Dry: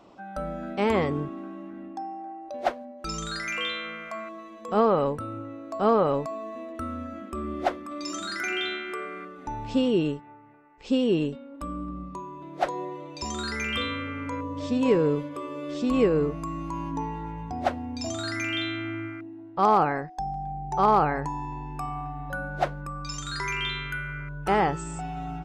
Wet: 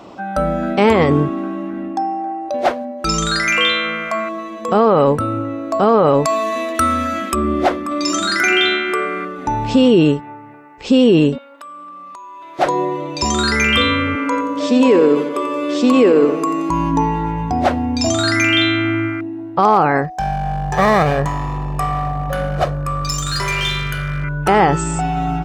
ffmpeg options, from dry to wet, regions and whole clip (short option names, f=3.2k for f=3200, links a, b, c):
-filter_complex "[0:a]asettb=1/sr,asplit=3[a][b][c];[a]atrim=end=6.254[d];[b]atrim=start=6.25:end=7.35,asetpts=PTS-STARTPTS,afade=t=in:d=0.004:c=qsin,afade=t=out:st=1.096:d=0.004:c=qsin,tiltshelf=f=1.3k:g=-9,bandreject=f=2.8k:w=25,acontrast=55[e];[c]atrim=start=7.346[f];[d][e]acrossfade=d=0.004:c1=hsin:c2=qsin[g];[g][f]acrossfade=d=0.004:c1=qsin:c2=hsin,asettb=1/sr,asplit=3[h][i][j];[h]atrim=end=11.384[k];[i]atrim=start=11.38:end=12.59,asetpts=PTS-STARTPTS,afade=t=in:d=0.004:c=qsin,afade=t=out:st=1.206:d=0.004:c=qsin,highpass=980,acompressor=threshold=-47dB:ratio=10:attack=3.2:release=140:knee=1:detection=peak[l];[j]atrim=start=12.586[m];[k][l]acrossfade=d=0.004:c1=hsin:c2=qsin[n];[n][m]acrossfade=d=0.004:c1=qsin:c2=hsin,asettb=1/sr,asplit=3[o][p][q];[o]atrim=end=14.154[r];[p]atrim=start=14.15:end=16.7,asetpts=PTS-STARTPTS,afade=t=in:d=0.004:c=qsin,afade=t=out:st=2.546:d=0.004:c=qsin,highpass=f=240:w=0.5412,highpass=f=240:w=1.3066,aecho=1:1:88|176|264|352|440|528:0.237|0.13|0.0717|0.0395|0.0217|0.0119,atrim=end_sample=112455[s];[q]atrim=start=16.696[t];[r][s]acrossfade=d=0.004:c1=hsin:c2=qsin[u];[u][t]acrossfade=d=0.004:c1=qsin:c2=hsin,asettb=1/sr,asplit=3[v][w][x];[v]atrim=end=20.044[y];[w]atrim=start=20.04:end=24.24,asetpts=PTS-STARTPTS,afade=t=in:d=0.004:c=qsin,afade=t=out:st=4.196:d=0.004:c=qsin,equalizer=f=2.2k:w=0.51:g=-5.5,aeval=exprs='clip(val(0),-1,0.0168)':c=same,aecho=1:1:1.7:0.56,atrim=end_sample=185220[z];[x]atrim=start=24.236[aa];[y][z]acrossfade=d=0.004:c1=hsin:c2=qsin[ab];[ab][aa]acrossfade=d=0.004:c1=qsin:c2=hsin,highpass=47,alimiter=level_in=18dB:limit=-1dB:release=50:level=0:latency=1,volume=-3dB"